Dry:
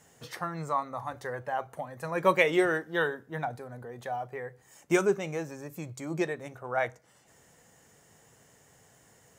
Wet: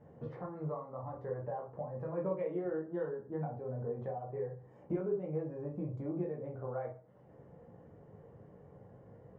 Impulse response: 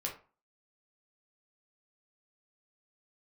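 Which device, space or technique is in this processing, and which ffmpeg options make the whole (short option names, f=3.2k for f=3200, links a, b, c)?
television next door: -filter_complex "[0:a]acompressor=threshold=-45dB:ratio=3,lowpass=580[a];[1:a]atrim=start_sample=2205[b];[a][b]afir=irnorm=-1:irlink=0,volume=7dB"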